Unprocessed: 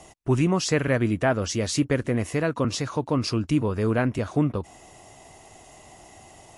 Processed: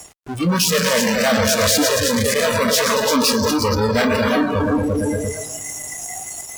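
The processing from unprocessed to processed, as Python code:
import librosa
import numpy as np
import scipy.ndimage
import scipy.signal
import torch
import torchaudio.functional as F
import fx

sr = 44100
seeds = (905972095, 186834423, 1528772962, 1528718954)

y = fx.echo_heads(x, sr, ms=115, heads='all three', feedback_pct=55, wet_db=-11)
y = fx.fuzz(y, sr, gain_db=44.0, gate_db=-49.0)
y = fx.noise_reduce_blind(y, sr, reduce_db=21)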